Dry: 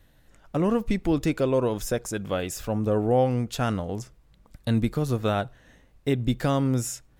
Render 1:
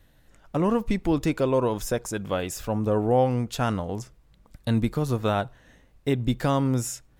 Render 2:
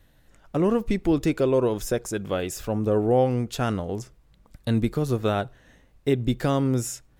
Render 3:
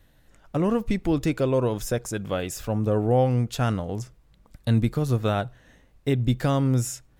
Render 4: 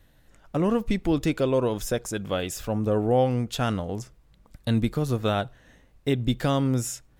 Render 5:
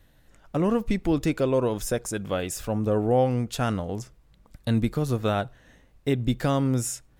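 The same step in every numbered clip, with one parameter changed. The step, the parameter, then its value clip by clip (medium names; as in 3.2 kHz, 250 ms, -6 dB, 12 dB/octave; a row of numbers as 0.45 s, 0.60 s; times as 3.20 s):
dynamic bell, frequency: 960 Hz, 380 Hz, 120 Hz, 3.3 kHz, 9.2 kHz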